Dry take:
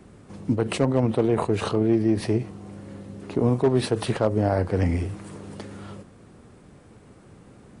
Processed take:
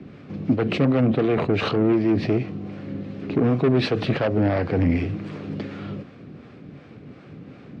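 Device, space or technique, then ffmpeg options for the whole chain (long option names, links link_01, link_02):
guitar amplifier with harmonic tremolo: -filter_complex "[0:a]acrossover=split=510[link_01][link_02];[link_01]aeval=exprs='val(0)*(1-0.5/2+0.5/2*cos(2*PI*2.7*n/s))':channel_layout=same[link_03];[link_02]aeval=exprs='val(0)*(1-0.5/2-0.5/2*cos(2*PI*2.7*n/s))':channel_layout=same[link_04];[link_03][link_04]amix=inputs=2:normalize=0,asoftclip=type=tanh:threshold=-23.5dB,highpass=85,equalizer=frequency=150:width_type=q:width=4:gain=6,equalizer=frequency=270:width_type=q:width=4:gain=6,equalizer=frequency=930:width_type=q:width=4:gain=-7,equalizer=frequency=2400:width_type=q:width=4:gain=5,lowpass=frequency=4500:width=0.5412,lowpass=frequency=4500:width=1.3066,volume=7.5dB"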